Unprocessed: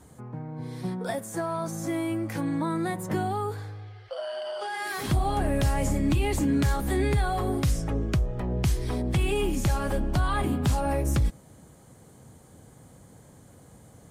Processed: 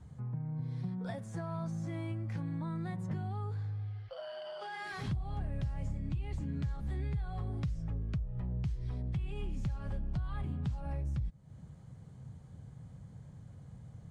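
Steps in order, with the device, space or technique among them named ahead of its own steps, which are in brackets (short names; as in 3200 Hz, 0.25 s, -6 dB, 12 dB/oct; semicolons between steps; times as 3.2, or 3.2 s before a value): jukebox (LPF 5200 Hz 12 dB/oct; resonant low shelf 210 Hz +11 dB, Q 1.5; compressor 4:1, threshold -26 dBFS, peak gain reduction 16 dB); gain -9 dB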